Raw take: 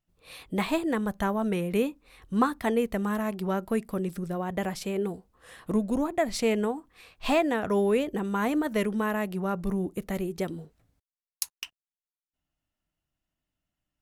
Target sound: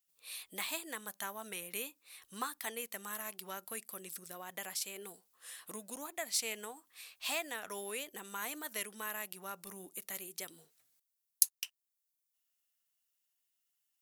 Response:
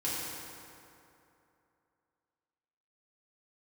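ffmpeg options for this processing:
-filter_complex "[0:a]aderivative,asplit=2[link_01][link_02];[link_02]acompressor=threshold=-55dB:ratio=6,volume=0dB[link_03];[link_01][link_03]amix=inputs=2:normalize=0,volume=2dB"

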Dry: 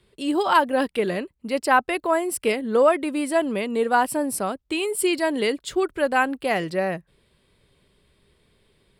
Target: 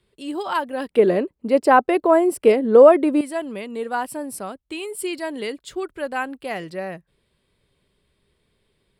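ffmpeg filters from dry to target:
ffmpeg -i in.wav -filter_complex "[0:a]asettb=1/sr,asplit=3[link_01][link_02][link_03];[link_01]atrim=end=0.904[link_04];[link_02]atrim=start=0.9:end=3.21,asetpts=PTS-STARTPTS,afade=type=in:duration=0.004:curve=qsin,afade=type=out:start_time=2.306:duration=0.004:curve=qsin,equalizer=frequency=420:width=0.4:gain=14.5[link_05];[link_03]atrim=start=3.206[link_06];[link_04][link_05]acrossfade=duration=0.004:curve1=hsin:curve2=qsin[link_07];[link_07][link_06]acrossfade=duration=0.004:curve1=qsin:curve2=hsin,volume=-5.5dB" out.wav

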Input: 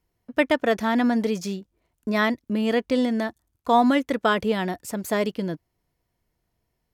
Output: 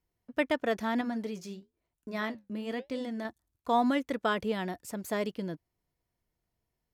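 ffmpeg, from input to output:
ffmpeg -i in.wav -filter_complex "[0:a]asettb=1/sr,asplit=3[link_01][link_02][link_03];[link_01]atrim=end=1.014[link_04];[link_02]atrim=start=1.01:end=3.25,asetpts=PTS-STARTPTS,afade=type=in:duration=0.004:curve=qsin,afade=type=out:start_time=2.236:duration=0.004:curve=qsin,flanger=delay=5.6:depth=7.8:regen=-68:speed=1:shape=triangular[link_05];[link_03]atrim=start=3.246[link_06];[link_04][link_05]acrossfade=duration=0.004:curve1=hsin:curve2=qsin[link_07];[link_07][link_06]acrossfade=duration=0.004:curve1=qsin:curve2=hsin,volume=-8dB" out.wav

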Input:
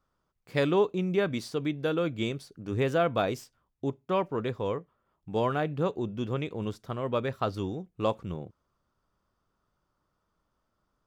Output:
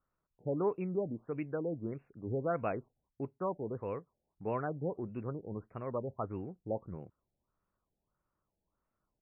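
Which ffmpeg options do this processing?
ffmpeg -i in.wav -af "atempo=1.2,afftfilt=real='re*lt(b*sr/1024,860*pow(2900/860,0.5+0.5*sin(2*PI*1.6*pts/sr)))':imag='im*lt(b*sr/1024,860*pow(2900/860,0.5+0.5*sin(2*PI*1.6*pts/sr)))':win_size=1024:overlap=0.75,volume=-7.5dB" out.wav

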